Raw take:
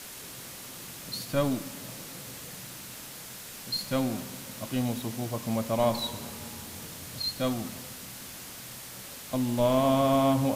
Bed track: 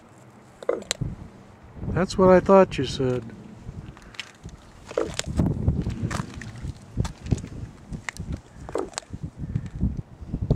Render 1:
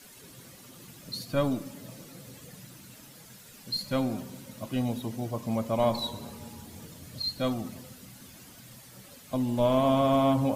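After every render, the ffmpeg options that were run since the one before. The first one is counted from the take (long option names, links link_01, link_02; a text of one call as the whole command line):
ffmpeg -i in.wav -af "afftdn=noise_reduction=11:noise_floor=-43" out.wav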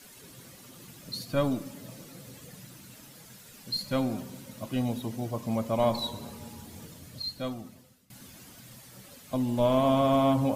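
ffmpeg -i in.wav -filter_complex "[0:a]asplit=2[link_01][link_02];[link_01]atrim=end=8.1,asetpts=PTS-STARTPTS,afade=type=out:start_time=6.83:duration=1.27:silence=0.0841395[link_03];[link_02]atrim=start=8.1,asetpts=PTS-STARTPTS,afade=type=in:duration=0.004:curve=hsin:silence=0.0841395[link_04];[link_03][link_04]concat=n=2:v=0:a=1" out.wav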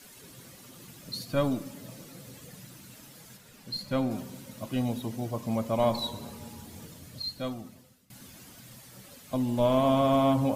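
ffmpeg -i in.wav -filter_complex "[0:a]asettb=1/sr,asplit=3[link_01][link_02][link_03];[link_01]atrim=end=3.374[link_04];[link_02]atrim=start=3.37:end=4.11,asetpts=PTS-STARTPTS,afade=type=in:duration=0.004:curve=qsin,afade=type=out:start_time=0.736:duration=0.004:curve=qsin,highshelf=frequency=3800:gain=-6.5[link_05];[link_03]atrim=start=4.106[link_06];[link_04][link_05]acrossfade=duration=0.004:curve1=hsin:curve2=qsin[link_07];[link_07][link_06]acrossfade=duration=0.004:curve1=qsin:curve2=hsin" out.wav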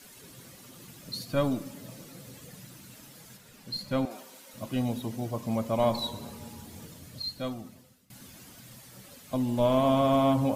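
ffmpeg -i in.wav -filter_complex "[0:a]asettb=1/sr,asplit=3[link_01][link_02][link_03];[link_01]atrim=end=4.054[link_04];[link_02]atrim=start=4.05:end=4.54,asetpts=PTS-STARTPTS,afade=type=in:duration=0.004:curve=qsin,afade=type=out:start_time=0.486:duration=0.004:curve=qsin,highpass=580[link_05];[link_03]atrim=start=4.536[link_06];[link_04][link_05]acrossfade=duration=0.004:curve1=hsin:curve2=qsin[link_07];[link_07][link_06]acrossfade=duration=0.004:curve1=qsin:curve2=hsin" out.wav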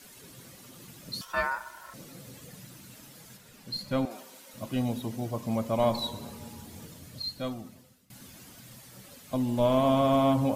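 ffmpeg -i in.wav -filter_complex "[0:a]asettb=1/sr,asplit=3[link_01][link_02][link_03];[link_01]atrim=end=1.214[link_04];[link_02]atrim=start=1.21:end=1.94,asetpts=PTS-STARTPTS,afade=type=in:duration=0.004:curve=qsin,afade=type=out:start_time=0.726:duration=0.004:curve=qsin,aeval=exprs='val(0)*sin(2*PI*1200*n/s)':channel_layout=same[link_05];[link_03]atrim=start=1.936[link_06];[link_04][link_05]acrossfade=duration=0.004:curve1=hsin:curve2=qsin[link_07];[link_07][link_06]acrossfade=duration=0.004:curve1=qsin:curve2=hsin" out.wav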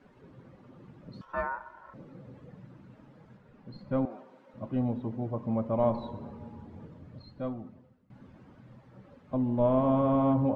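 ffmpeg -i in.wav -af "lowpass=1100,bandreject=frequency=690:width=15" out.wav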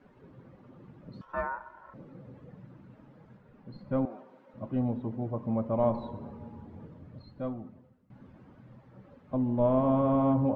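ffmpeg -i in.wav -af "highshelf=frequency=3500:gain=-7.5" out.wav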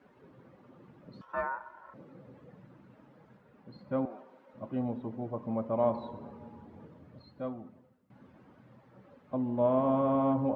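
ffmpeg -i in.wav -af "highpass=41,lowshelf=frequency=170:gain=-10.5" out.wav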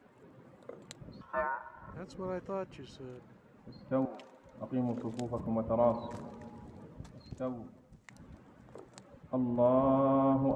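ffmpeg -i in.wav -i bed.wav -filter_complex "[1:a]volume=-23dB[link_01];[0:a][link_01]amix=inputs=2:normalize=0" out.wav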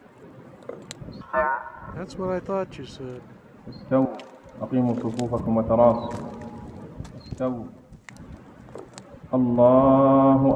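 ffmpeg -i in.wav -af "volume=11dB" out.wav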